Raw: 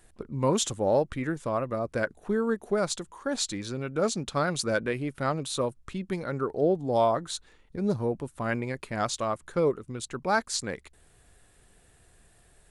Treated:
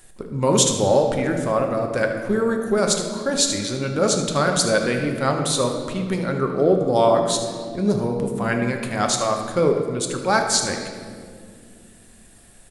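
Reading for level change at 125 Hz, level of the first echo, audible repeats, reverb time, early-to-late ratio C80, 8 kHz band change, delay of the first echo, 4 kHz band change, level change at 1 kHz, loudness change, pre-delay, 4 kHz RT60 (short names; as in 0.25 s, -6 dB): +7.5 dB, -12.5 dB, 1, 2.2 s, 7.0 dB, +12.5 dB, 75 ms, +10.5 dB, +7.0 dB, +8.5 dB, 4 ms, 1.3 s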